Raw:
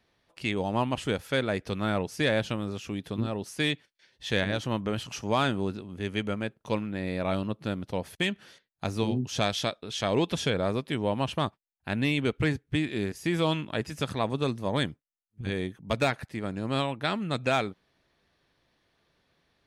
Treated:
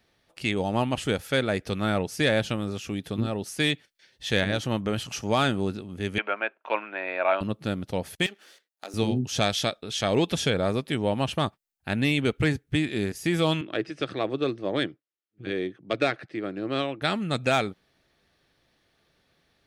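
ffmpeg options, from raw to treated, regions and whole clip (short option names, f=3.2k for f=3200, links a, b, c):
-filter_complex "[0:a]asettb=1/sr,asplit=3[a][b][c];[a]atrim=end=6.184[d];[b]atrim=start=6.18:end=7.41,asetpts=PTS-STARTPTS,afade=t=in:d=0.004:c=qsin,afade=t=out:st=1.226:d=0.004:c=qsin,acrusher=bits=8:mode=log:mix=0:aa=0.000001,highpass=f=380:w=0.5412,highpass=f=380:w=1.3066,equalizer=f=460:t=q:w=4:g=-6,equalizer=f=660:t=q:w=4:g=6,equalizer=f=990:t=q:w=4:g=10,equalizer=f=1.5k:t=q:w=4:g=9,equalizer=f=2.5k:t=q:w=4:g=8,lowpass=f=2.9k:w=0.5412,lowpass=f=2.9k:w=1.3066[e];[c]atrim=start=7.406[f];[d][e]acrossfade=d=0.004:c1=hsin:c2=qsin[g];[g][f]acrossfade=d=0.004:c1=qsin:c2=hsin,asettb=1/sr,asplit=3[h][i][j];[h]atrim=end=8.264[k];[i]atrim=start=8.26:end=8.94,asetpts=PTS-STARTPTS,afade=t=in:d=0.004:c=qsin,afade=t=out:st=0.676:d=0.004:c=qsin,aeval=exprs='if(lt(val(0),0),0.251*val(0),val(0))':c=same,highpass=f=290:w=0.5412,highpass=f=290:w=1.3066,acompressor=threshold=-40dB:ratio=2:attack=3.2:release=140:knee=1:detection=peak[l];[j]atrim=start=8.936[m];[k][l]acrossfade=d=0.004:c1=hsin:c2=qsin[n];[n][m]acrossfade=d=0.004:c1=qsin:c2=hsin,asettb=1/sr,asplit=3[o][p][q];[o]atrim=end=13.614[r];[p]atrim=start=13.61:end=17.02,asetpts=PTS-STARTPTS,afade=t=in:d=0.004:c=qsin,afade=t=out:st=3.406:d=0.004:c=qsin,adynamicsmooth=sensitivity=1:basefreq=4.4k,highpass=f=140:w=0.5412,highpass=f=140:w=1.3066,equalizer=f=160:t=q:w=4:g=-10,equalizer=f=230:t=q:w=4:g=-9,equalizer=f=330:t=q:w=4:g=8,equalizer=f=890:t=q:w=4:g=-8,equalizer=f=7k:t=q:w=4:g=-9,lowpass=f=8.9k:w=0.5412,lowpass=f=8.9k:w=1.3066[s];[q]atrim=start=17.016[t];[r][s]acrossfade=d=0.004:c1=hsin:c2=qsin[u];[u][t]acrossfade=d=0.004:c1=qsin:c2=hsin,highshelf=f=6.3k:g=4.5,bandreject=f=1k:w=9.6,volume=2.5dB"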